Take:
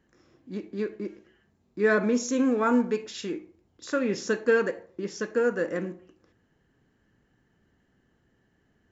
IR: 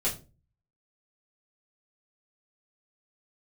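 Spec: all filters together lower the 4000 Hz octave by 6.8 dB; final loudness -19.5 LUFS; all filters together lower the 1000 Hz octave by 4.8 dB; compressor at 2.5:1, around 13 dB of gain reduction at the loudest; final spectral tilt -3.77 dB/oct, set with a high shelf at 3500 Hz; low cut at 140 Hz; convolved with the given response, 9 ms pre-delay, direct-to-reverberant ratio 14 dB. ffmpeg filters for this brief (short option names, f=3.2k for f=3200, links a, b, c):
-filter_complex "[0:a]highpass=140,equalizer=f=1k:t=o:g=-5.5,highshelf=f=3.5k:g=-7,equalizer=f=4k:t=o:g=-3.5,acompressor=threshold=-39dB:ratio=2.5,asplit=2[a][b];[1:a]atrim=start_sample=2205,adelay=9[c];[b][c]afir=irnorm=-1:irlink=0,volume=-21dB[d];[a][d]amix=inputs=2:normalize=0,volume=19.5dB"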